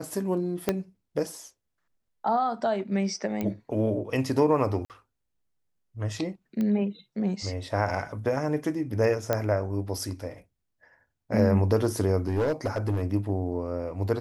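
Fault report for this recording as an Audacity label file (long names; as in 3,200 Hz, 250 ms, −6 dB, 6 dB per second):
0.690000	0.690000	click −10 dBFS
3.410000	3.410000	click −17 dBFS
4.850000	4.900000	drop-out 48 ms
6.610000	6.610000	click −19 dBFS
9.330000	9.330000	click −11 dBFS
12.270000	13.030000	clipping −21.5 dBFS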